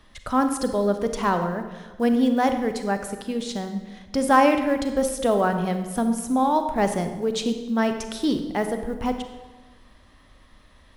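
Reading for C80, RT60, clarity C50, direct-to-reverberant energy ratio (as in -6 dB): 10.0 dB, 1.3 s, 8.0 dB, 7.0 dB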